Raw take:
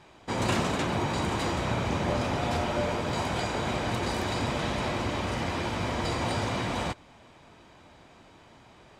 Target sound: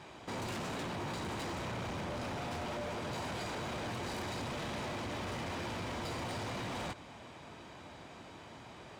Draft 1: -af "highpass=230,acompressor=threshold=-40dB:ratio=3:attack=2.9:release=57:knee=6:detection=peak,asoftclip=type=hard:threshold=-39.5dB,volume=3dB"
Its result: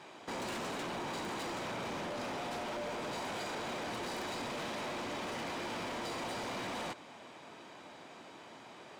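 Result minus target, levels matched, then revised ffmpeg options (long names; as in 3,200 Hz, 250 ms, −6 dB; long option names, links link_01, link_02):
125 Hz band −8.5 dB
-af "highpass=66,acompressor=threshold=-40dB:ratio=3:attack=2.9:release=57:knee=6:detection=peak,asoftclip=type=hard:threshold=-39.5dB,volume=3dB"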